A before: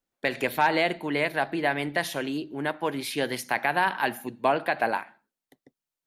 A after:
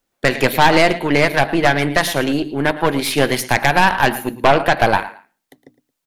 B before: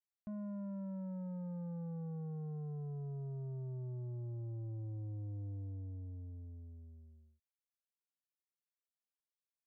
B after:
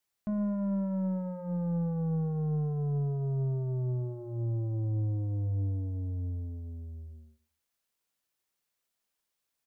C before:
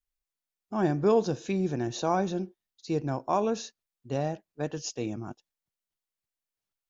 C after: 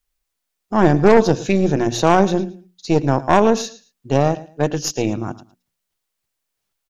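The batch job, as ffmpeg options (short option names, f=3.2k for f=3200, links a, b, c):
-af "bandreject=f=60:t=h:w=6,bandreject=f=120:t=h:w=6,bandreject=f=180:t=h:w=6,bandreject=f=240:t=h:w=6,bandreject=f=300:t=h:w=6,aecho=1:1:111|222:0.158|0.0349,aeval=exprs='0.355*(cos(1*acos(clip(val(0)/0.355,-1,1)))-cos(1*PI/2))+0.112*(cos(5*acos(clip(val(0)/0.355,-1,1)))-cos(5*PI/2))+0.0891*(cos(6*acos(clip(val(0)/0.355,-1,1)))-cos(6*PI/2))+0.0282*(cos(7*acos(clip(val(0)/0.355,-1,1)))-cos(7*PI/2))':c=same,volume=6dB"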